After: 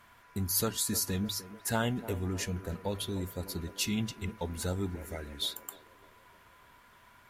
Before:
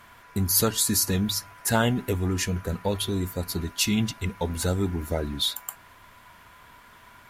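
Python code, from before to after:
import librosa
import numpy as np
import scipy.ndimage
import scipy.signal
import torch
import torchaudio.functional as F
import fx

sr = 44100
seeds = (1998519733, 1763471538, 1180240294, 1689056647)

p1 = fx.graphic_eq(x, sr, hz=(125, 250, 500, 1000, 2000, 4000, 8000), db=(-9, -5, -5, -4, 6, -4, 4), at=(4.95, 5.42))
p2 = p1 + fx.echo_banded(p1, sr, ms=302, feedback_pct=57, hz=470.0, wet_db=-12.5, dry=0)
y = F.gain(torch.from_numpy(p2), -8.0).numpy()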